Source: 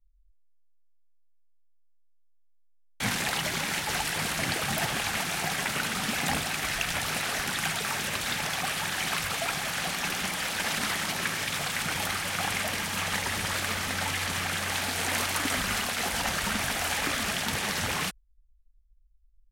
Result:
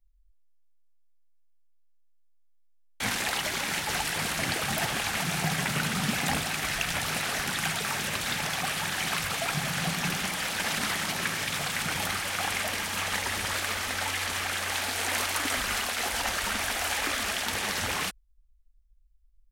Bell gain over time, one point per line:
bell 150 Hz 0.84 oct
-8.5 dB
from 3.66 s -1 dB
from 5.21 s +10 dB
from 6.18 s +2 dB
from 9.54 s +11.5 dB
from 10.17 s +1 dB
from 12.2 s -8 dB
from 13.59 s -15 dB
from 17.55 s -7 dB

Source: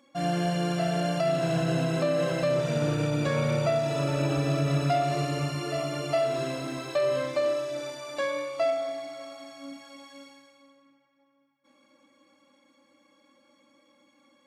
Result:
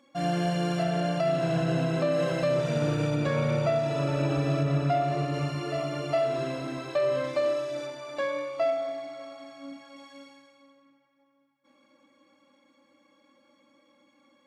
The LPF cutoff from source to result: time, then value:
LPF 6 dB/oct
8100 Hz
from 0.83 s 4000 Hz
from 2.12 s 6700 Hz
from 3.15 s 3600 Hz
from 4.63 s 2000 Hz
from 5.34 s 3400 Hz
from 7.24 s 5700 Hz
from 7.86 s 2900 Hz
from 9.96 s 4800 Hz

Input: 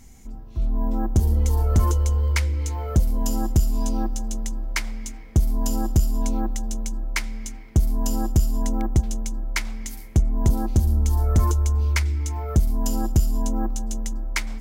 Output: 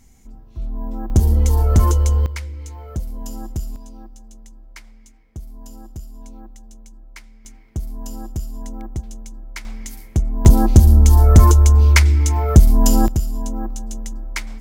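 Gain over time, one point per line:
-3.5 dB
from 1.1 s +5 dB
from 2.26 s -7 dB
from 3.76 s -15 dB
from 7.45 s -7.5 dB
from 9.65 s +0.5 dB
from 10.45 s +10 dB
from 13.08 s -1 dB

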